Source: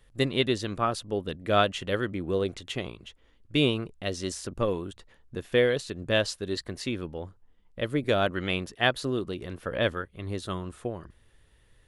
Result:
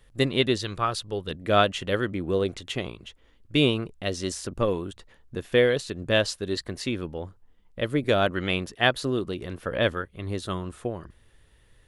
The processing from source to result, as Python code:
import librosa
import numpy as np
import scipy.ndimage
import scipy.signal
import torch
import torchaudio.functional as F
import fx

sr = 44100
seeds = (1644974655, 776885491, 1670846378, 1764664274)

y = fx.graphic_eq_15(x, sr, hz=(250, 630, 4000), db=(-10, -5, 4), at=(0.56, 1.31))
y = y * librosa.db_to_amplitude(2.5)